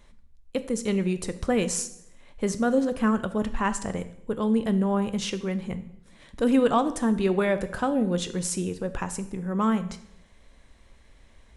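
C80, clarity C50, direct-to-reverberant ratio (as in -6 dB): 17.0 dB, 14.0 dB, 11.0 dB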